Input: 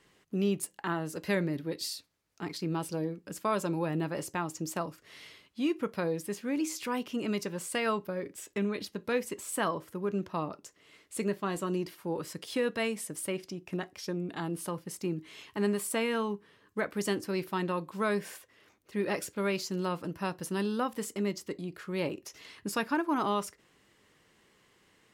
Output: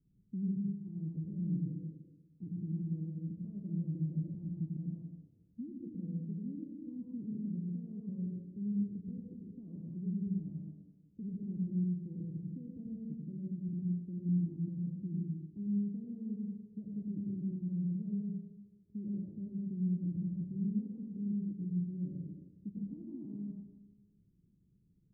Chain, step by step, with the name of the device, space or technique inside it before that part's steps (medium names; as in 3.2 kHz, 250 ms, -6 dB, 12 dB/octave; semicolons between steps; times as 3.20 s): club heard from the street (peak limiter -27.5 dBFS, peak gain reduction 10.5 dB; low-pass 210 Hz 24 dB/octave; reverberation RT60 1.2 s, pre-delay 87 ms, DRR -2 dB)